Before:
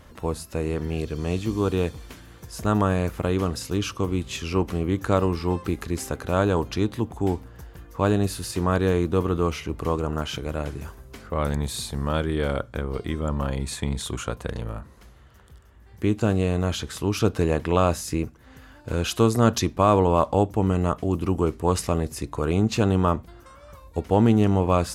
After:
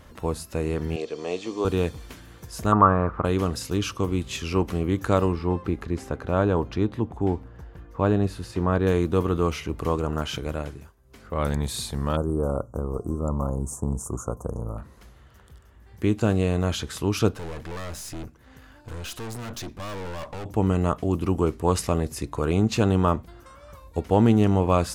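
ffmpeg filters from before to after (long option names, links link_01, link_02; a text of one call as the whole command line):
ffmpeg -i in.wav -filter_complex "[0:a]asettb=1/sr,asplit=3[link_01][link_02][link_03];[link_01]atrim=end=0.964[link_04];[link_02]atrim=start=0.96:end=1.65,asetpts=PTS-STARTPTS,afade=type=in:duration=0.004:curve=qsin,afade=type=out:start_time=0.686:duration=0.004:curve=qsin,highpass=380,equalizer=frequency=470:width_type=q:width=4:gain=5,equalizer=frequency=700:width_type=q:width=4:gain=3,equalizer=frequency=1500:width_type=q:width=4:gain=-6,lowpass=frequency=7600:width=0.5412,lowpass=frequency=7600:width=1.3066[link_05];[link_03]atrim=start=1.646[link_06];[link_04][link_05]acrossfade=duration=0.004:curve1=hsin:curve2=qsin[link_07];[link_07][link_06]acrossfade=duration=0.004:curve1=qsin:curve2=hsin,asettb=1/sr,asplit=3[link_08][link_09][link_10];[link_08]atrim=end=2.724[link_11];[link_09]atrim=start=2.72:end=3.25,asetpts=PTS-STARTPTS,afade=type=in:duration=0.004:curve=qsin,afade=type=out:start_time=0.526:duration=0.004:curve=qsin,lowpass=frequency=1200:width_type=q:width=4.4[link_12];[link_10]atrim=start=3.246[link_13];[link_11][link_12]acrossfade=duration=0.004:curve1=hsin:curve2=qsin[link_14];[link_14][link_13]acrossfade=duration=0.004:curve1=qsin:curve2=hsin,asettb=1/sr,asplit=3[link_15][link_16][link_17];[link_15]atrim=end=5.324[link_18];[link_16]atrim=start=5.32:end=8.87,asetpts=PTS-STARTPTS,afade=type=in:duration=0.004:curve=qsin,afade=type=out:start_time=3.546:duration=0.004:curve=qsin,lowpass=frequency=1700:poles=1[link_19];[link_17]atrim=start=8.866[link_20];[link_18][link_19]acrossfade=duration=0.004:curve1=hsin:curve2=qsin[link_21];[link_21][link_20]acrossfade=duration=0.004:curve1=qsin:curve2=hsin,asplit=3[link_22][link_23][link_24];[link_22]afade=type=out:start_time=12.15:duration=0.02[link_25];[link_23]asuperstop=centerf=2800:order=12:qfactor=0.58,afade=type=in:start_time=12.15:duration=0.02,afade=type=out:start_time=14.77:duration=0.02[link_26];[link_24]afade=type=in:start_time=14.77:duration=0.02[link_27];[link_25][link_26][link_27]amix=inputs=3:normalize=0,asettb=1/sr,asplit=3[link_28][link_29][link_30];[link_28]atrim=end=17.344[link_31];[link_29]atrim=start=17.34:end=20.46,asetpts=PTS-STARTPTS,afade=type=in:duration=0.004:curve=qsin,afade=type=out:start_time=3.116:duration=0.004:curve=qsin,aeval=exprs='(tanh(44.7*val(0)+0.5)-tanh(0.5))/44.7':channel_layout=same[link_32];[link_30]atrim=start=20.456[link_33];[link_31][link_32]acrossfade=duration=0.004:curve1=hsin:curve2=qsin[link_34];[link_34][link_33]acrossfade=duration=0.004:curve1=qsin:curve2=hsin,asplit=3[link_35][link_36][link_37];[link_35]atrim=end=10.93,asetpts=PTS-STARTPTS,afade=type=out:start_time=10.5:duration=0.43:silence=0.125893[link_38];[link_36]atrim=start=10.93:end=11.01,asetpts=PTS-STARTPTS,volume=-18dB[link_39];[link_37]atrim=start=11.01,asetpts=PTS-STARTPTS,afade=type=in:duration=0.43:silence=0.125893[link_40];[link_38][link_39][link_40]concat=n=3:v=0:a=1" out.wav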